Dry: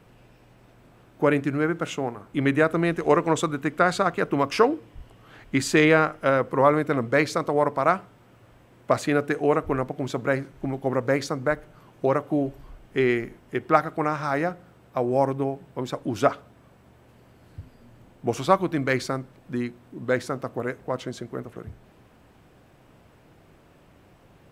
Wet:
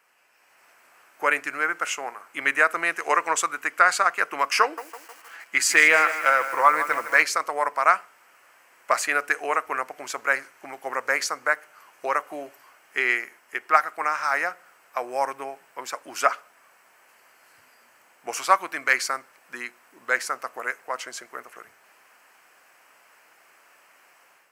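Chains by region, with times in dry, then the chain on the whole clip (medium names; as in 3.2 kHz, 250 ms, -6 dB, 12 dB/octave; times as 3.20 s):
4.62–7.23 s: comb 6 ms, depth 38% + bit-crushed delay 156 ms, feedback 55%, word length 7-bit, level -12 dB
whole clip: high-pass 1.4 kHz 12 dB/octave; peaking EQ 3.6 kHz -14.5 dB 0.42 oct; level rider gain up to 8.5 dB; trim +1.5 dB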